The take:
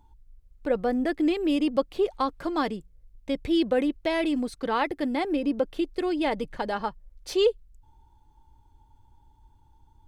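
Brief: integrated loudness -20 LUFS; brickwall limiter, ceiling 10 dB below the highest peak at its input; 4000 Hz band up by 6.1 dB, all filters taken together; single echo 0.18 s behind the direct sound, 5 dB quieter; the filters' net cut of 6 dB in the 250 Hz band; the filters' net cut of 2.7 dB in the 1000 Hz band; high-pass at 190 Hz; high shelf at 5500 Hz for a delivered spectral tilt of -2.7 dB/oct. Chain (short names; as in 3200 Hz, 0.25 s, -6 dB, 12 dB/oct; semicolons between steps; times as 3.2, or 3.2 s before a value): HPF 190 Hz; bell 250 Hz -7 dB; bell 1000 Hz -3.5 dB; bell 4000 Hz +5.5 dB; high shelf 5500 Hz +8 dB; limiter -22 dBFS; echo 0.18 s -5 dB; gain +12 dB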